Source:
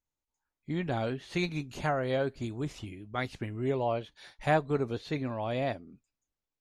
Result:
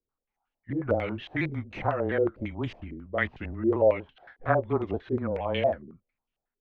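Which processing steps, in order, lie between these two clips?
pitch shifter swept by a sawtooth −2.5 semitones, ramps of 235 ms
frequency shifter −18 Hz
low-pass on a step sequencer 11 Hz 420–2,900 Hz
level +2 dB

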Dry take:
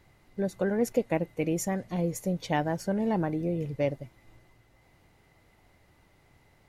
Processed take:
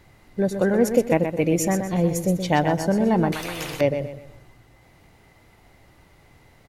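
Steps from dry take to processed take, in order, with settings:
repeating echo 125 ms, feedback 33%, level −8 dB
0:03.32–0:03.81: every bin compressed towards the loudest bin 4 to 1
level +7.5 dB

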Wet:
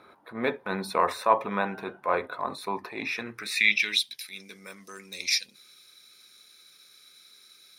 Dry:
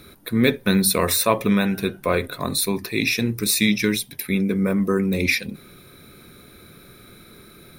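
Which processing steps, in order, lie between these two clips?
transient designer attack −8 dB, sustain 0 dB
band-pass filter sweep 920 Hz → 5,500 Hz, 0:03.01–0:04.29
level +6 dB

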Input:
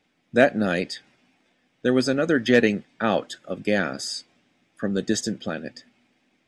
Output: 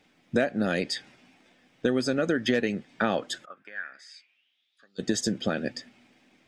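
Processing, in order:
downward compressor 6 to 1, threshold −27 dBFS, peak gain reduction 15.5 dB
0:03.44–0:04.98: resonant band-pass 1,200 Hz → 4,700 Hz, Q 6.6
level +5 dB

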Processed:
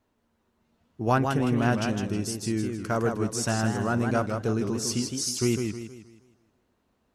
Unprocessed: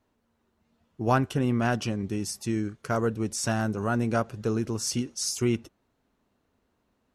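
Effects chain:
feedback echo with a swinging delay time 158 ms, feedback 40%, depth 155 cents, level −5.5 dB

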